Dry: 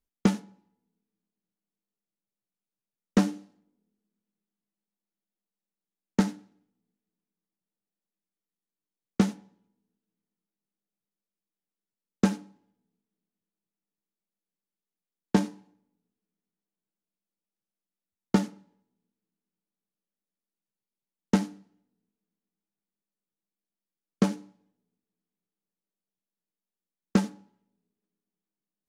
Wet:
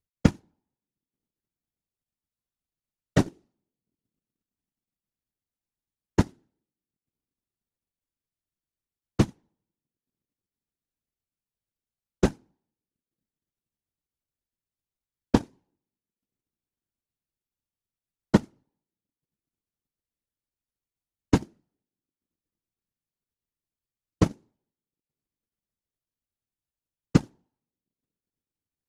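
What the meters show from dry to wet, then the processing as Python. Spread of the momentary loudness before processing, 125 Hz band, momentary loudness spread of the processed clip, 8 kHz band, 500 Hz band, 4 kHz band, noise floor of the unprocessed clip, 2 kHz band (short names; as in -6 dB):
11 LU, +4.5 dB, 3 LU, 0.0 dB, +3.0 dB, +0.5 dB, under -85 dBFS, +1.5 dB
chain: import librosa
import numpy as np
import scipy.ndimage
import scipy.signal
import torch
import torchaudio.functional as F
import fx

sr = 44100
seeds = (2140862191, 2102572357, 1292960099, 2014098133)

y = fx.whisperise(x, sr, seeds[0])
y = fx.transient(y, sr, attack_db=6, sustain_db=-12)
y = y * 10.0 ** (-3.0 / 20.0)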